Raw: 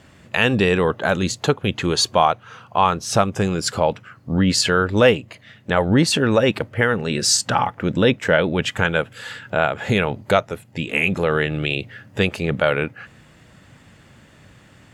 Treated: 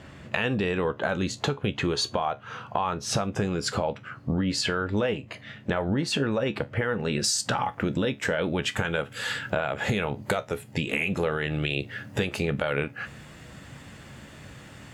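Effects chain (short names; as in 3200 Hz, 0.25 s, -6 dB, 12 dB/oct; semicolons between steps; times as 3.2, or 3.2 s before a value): high shelf 6000 Hz -10 dB, from 7.24 s +2 dB; limiter -9 dBFS, peak gain reduction 7 dB; compressor, threshold -27 dBFS, peak gain reduction 12.5 dB; resonator 70 Hz, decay 0.19 s, harmonics all, mix 60%; gain +7 dB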